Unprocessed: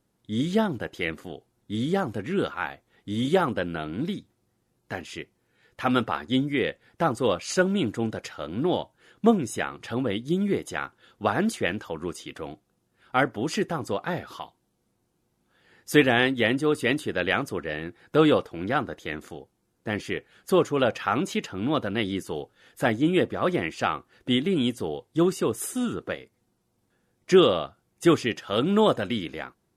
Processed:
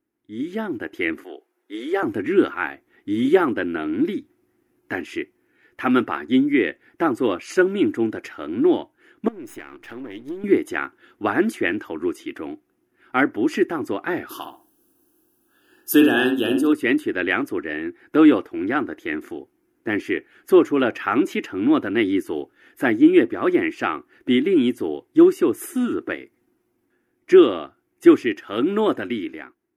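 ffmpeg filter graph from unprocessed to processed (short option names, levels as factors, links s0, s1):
-filter_complex "[0:a]asettb=1/sr,asplit=3[s0][s1][s2];[s0]atrim=end=1.244[s3];[s1]atrim=start=1.24:end=2.03,asetpts=PTS-STARTPTS,afade=t=in:d=0.004:c=qsin,afade=t=out:st=0.786:d=0.004:c=qsin,highpass=f=410:w=0.5412,highpass=f=410:w=1.3066,highshelf=f=4900:g=-3.5[s4];[s2]atrim=start=2.026[s5];[s3][s4]acrossfade=d=0.004:c1=hsin:c2=qsin[s6];[s6][s5]acrossfade=d=0.004:c1=qsin:c2=hsin,asettb=1/sr,asplit=3[s7][s8][s9];[s7]atrim=end=9.284[s10];[s8]atrim=start=9.28:end=10.44,asetpts=PTS-STARTPTS,afade=t=in:d=0.004:c=qsin,afade=t=out:st=1.156:d=0.004:c=qsin,aeval=exprs='if(lt(val(0),0),0.251*val(0),val(0))':c=same,equalizer=f=170:t=o:w=1.6:g=-3.5,acompressor=threshold=0.0251:ratio=16:attack=3.2:release=140:knee=1:detection=peak[s11];[s9]atrim=start=10.436[s12];[s10][s11]acrossfade=d=0.004:c1=hsin:c2=qsin[s13];[s13][s12]acrossfade=d=0.004:c1=qsin:c2=hsin,asettb=1/sr,asplit=3[s14][s15][s16];[s14]atrim=end=14.294[s17];[s15]atrim=start=14.29:end=16.73,asetpts=PTS-STARTPTS,afade=t=in:d=0.004:c=qsin,afade=t=out:st=2.436:d=0.004:c=qsin,asuperstop=centerf=2100:order=12:qfactor=2.6,aemphasis=mode=production:type=75fm,asplit=2[s18][s19];[s19]adelay=63,lowpass=f=1500:p=1,volume=0.668,asplit=2[s20][s21];[s21]adelay=63,lowpass=f=1500:p=1,volume=0.29,asplit=2[s22][s23];[s23]adelay=63,lowpass=f=1500:p=1,volume=0.29,asplit=2[s24][s25];[s25]adelay=63,lowpass=f=1500:p=1,volume=0.29[s26];[s18][s20][s22][s24][s26]amix=inputs=5:normalize=0,atrim=end_sample=107604[s27];[s16]atrim=start=16.726[s28];[s17][s27]acrossfade=d=0.004:c1=hsin:c2=qsin[s29];[s29][s28]acrossfade=d=0.004:c1=qsin:c2=hsin,equalizer=f=125:t=o:w=1:g=5,equalizer=f=250:t=o:w=1:g=6,equalizer=f=500:t=o:w=1:g=-12,equalizer=f=1000:t=o:w=1:g=-4,equalizer=f=2000:t=o:w=1:g=4,equalizer=f=4000:t=o:w=1:g=-11,equalizer=f=8000:t=o:w=1:g=-10,dynaudnorm=f=200:g=7:m=4.47,lowshelf=f=240:t=q:w=3:g=-12,volume=0.631"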